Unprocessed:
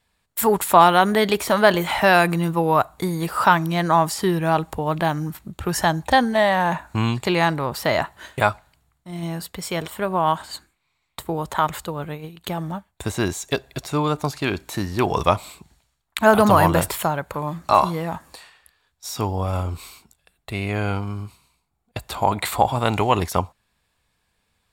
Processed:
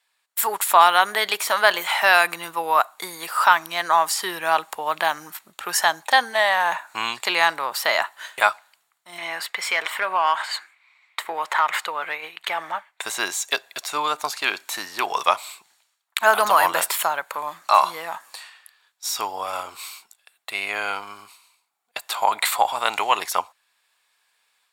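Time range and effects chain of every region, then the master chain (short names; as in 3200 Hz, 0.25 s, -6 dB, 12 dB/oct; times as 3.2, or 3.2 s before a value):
9.18–13.02 bell 2100 Hz +7.5 dB 0.58 oct + compressor 1.5:1, threshold -29 dBFS + overdrive pedal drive 14 dB, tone 1900 Hz, clips at -9.5 dBFS
whole clip: HPF 980 Hz 12 dB/oct; AGC gain up to 4.5 dB; gain +1 dB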